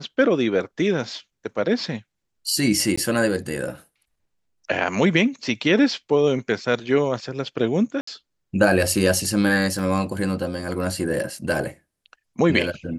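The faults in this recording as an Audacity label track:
2.960000	2.980000	drop-out 15 ms
8.010000	8.070000	drop-out 64 ms
9.790000	9.790000	drop-out 3.1 ms

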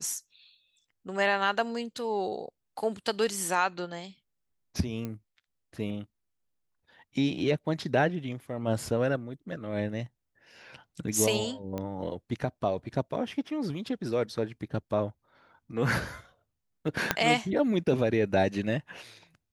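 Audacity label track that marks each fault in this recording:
5.050000	5.050000	click −22 dBFS
11.780000	11.780000	click −21 dBFS
17.110000	17.110000	click −7 dBFS

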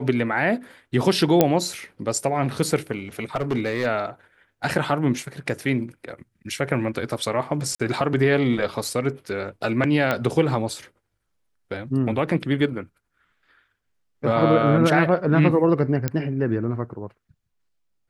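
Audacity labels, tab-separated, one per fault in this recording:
1.410000	1.410000	click −2 dBFS
3.350000	3.870000	clipping −18 dBFS
7.750000	7.800000	drop-out 46 ms
10.110000	10.110000	click −9 dBFS
16.080000	16.080000	click −9 dBFS

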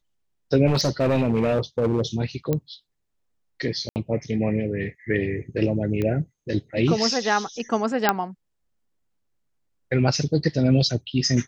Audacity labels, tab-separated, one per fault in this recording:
0.660000	2.020000	clipping −16.5 dBFS
2.530000	2.530000	click −11 dBFS
3.890000	3.960000	drop-out 69 ms
6.020000	6.020000	click −15 dBFS
8.090000	8.090000	click −3 dBFS

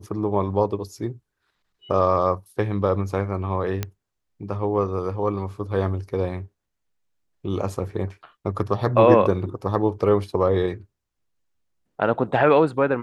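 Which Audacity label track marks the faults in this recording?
3.830000	3.830000	click −11 dBFS

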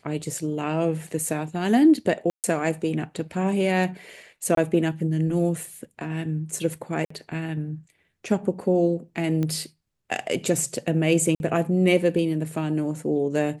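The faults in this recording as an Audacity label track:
2.300000	2.440000	drop-out 138 ms
4.550000	4.570000	drop-out 23 ms
7.050000	7.100000	drop-out 54 ms
9.430000	9.430000	click −16 dBFS
11.350000	11.400000	drop-out 51 ms

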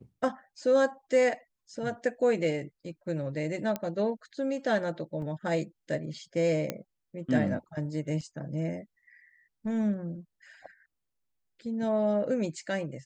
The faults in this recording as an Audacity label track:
3.760000	3.760000	click −17 dBFS
5.220000	5.220000	drop-out 2.4 ms
6.700000	6.700000	click −16 dBFS
8.210000	8.210000	drop-out 4.7 ms

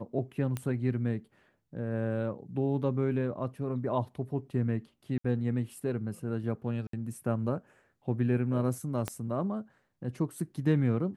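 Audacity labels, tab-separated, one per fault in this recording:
0.570000	0.570000	click −20 dBFS
5.180000	5.240000	drop-out 64 ms
6.870000	6.930000	drop-out 63 ms
9.080000	9.080000	click −17 dBFS

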